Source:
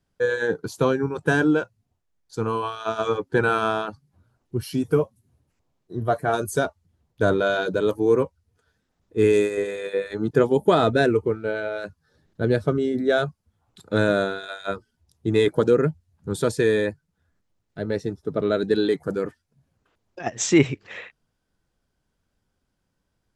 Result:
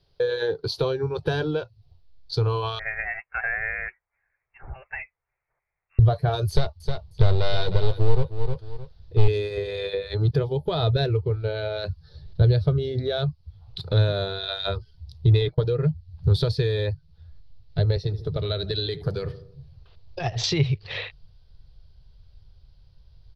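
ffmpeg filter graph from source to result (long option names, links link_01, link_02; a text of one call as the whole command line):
ffmpeg -i in.wav -filter_complex "[0:a]asettb=1/sr,asplit=3[link_01][link_02][link_03];[link_01]atrim=end=2.794[link_04];[link_02]atrim=start=2.79:end=5.99,asetpts=PTS-STARTPTS,afade=type=in:duration=0.004:curve=qsin,afade=type=out:start_time=3.196:duration=0.004:curve=qsin,highpass=frequency=1100:width=0.5412,highpass=frequency=1100:width=1.3066,lowpass=frequency=2600:width_type=q:width=0.5098,lowpass=frequency=2600:width_type=q:width=0.6013,lowpass=frequency=2600:width_type=q:width=0.9,lowpass=frequency=2600:width_type=q:width=2.563,afreqshift=-3100[link_05];[link_03]atrim=start=5.986[link_06];[link_04][link_05]acrossfade=duration=0.004:curve1=hsin:curve2=qsin[link_07];[link_07][link_06]acrossfade=duration=0.004:curve1=qsin:curve2=hsin,asettb=1/sr,asplit=3[link_08][link_09][link_10];[link_08]atrim=end=6.494[link_11];[link_09]atrim=start=6.49:end=9.28,asetpts=PTS-STARTPTS,afade=type=in:duration=0.004:curve=qsin,afade=type=out:start_time=2.786:duration=0.004:curve=qsin,aeval=exprs='clip(val(0),-1,0.0473)':channel_layout=same,aecho=1:1:310|620:0.2|0.0379,atrim=end_sample=123039[link_12];[link_10]atrim=start=9.276[link_13];[link_11][link_12]acrossfade=duration=0.004:curve1=hsin:curve2=qsin[link_14];[link_14][link_13]acrossfade=duration=0.004:curve1=qsin:curve2=hsin,asettb=1/sr,asplit=3[link_15][link_16][link_17];[link_15]atrim=end=15.414[link_18];[link_16]atrim=start=15.41:end=15.83,asetpts=PTS-STARTPTS,afade=type=in:duration=0.004:curve=qsin,afade=type=out:start_time=0.416:duration=0.004:curve=qsin,lowpass=5000,agate=range=-21dB:threshold=-37dB:ratio=16:release=100:detection=peak,aecho=1:1:6.6:0.35,atrim=end_sample=18522[link_19];[link_17]atrim=start=15.826[link_20];[link_18][link_19]acrossfade=duration=0.004:curve1=hsin:curve2=qsin[link_21];[link_21][link_20]acrossfade=duration=0.004:curve1=qsin:curve2=hsin,asettb=1/sr,asplit=3[link_22][link_23][link_24];[link_22]atrim=end=17.964[link_25];[link_23]atrim=start=17.96:end=20.44,asetpts=PTS-STARTPTS,afade=type=in:duration=0.004:curve=qsin,afade=type=out:start_time=2.476:duration=0.004:curve=qsin,acrossover=split=140|1500[link_26][link_27][link_28];[link_26]acompressor=threshold=-44dB:ratio=4[link_29];[link_27]acompressor=threshold=-29dB:ratio=4[link_30];[link_28]acompressor=threshold=-36dB:ratio=4[link_31];[link_29][link_30][link_31]amix=inputs=3:normalize=0,asplit=2[link_32][link_33];[link_33]adelay=76,lowpass=frequency=1200:poles=1,volume=-15dB,asplit=2[link_34][link_35];[link_35]adelay=76,lowpass=frequency=1200:poles=1,volume=0.51,asplit=2[link_36][link_37];[link_37]adelay=76,lowpass=frequency=1200:poles=1,volume=0.51,asplit=2[link_38][link_39];[link_39]adelay=76,lowpass=frequency=1200:poles=1,volume=0.51,asplit=2[link_40][link_41];[link_41]adelay=76,lowpass=frequency=1200:poles=1,volume=0.51[link_42];[link_32][link_34][link_36][link_38][link_40][link_42]amix=inputs=6:normalize=0,atrim=end_sample=109368[link_43];[link_24]atrim=start=20.436[link_44];[link_25][link_43]acrossfade=duration=0.004:curve1=hsin:curve2=qsin[link_45];[link_45][link_44]acrossfade=duration=0.004:curve1=qsin:curve2=hsin,firequalizer=gain_entry='entry(150,0);entry(220,-18);entry(380,2);entry(1500,-8);entry(4400,11);entry(7300,-23);entry(10000,-13)':delay=0.05:min_phase=1,acompressor=threshold=-34dB:ratio=3,asubboost=boost=10.5:cutoff=97,volume=9dB" out.wav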